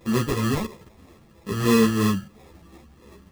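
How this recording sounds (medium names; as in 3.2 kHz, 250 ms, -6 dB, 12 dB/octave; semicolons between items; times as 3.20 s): phasing stages 4, 3 Hz, lowest notch 460–1800 Hz; aliases and images of a low sample rate 1.5 kHz, jitter 0%; a shimmering, thickened sound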